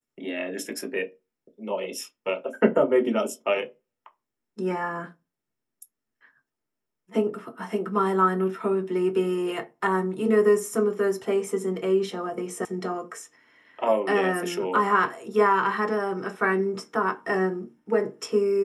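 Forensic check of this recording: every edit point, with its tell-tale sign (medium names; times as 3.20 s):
12.65 s: sound stops dead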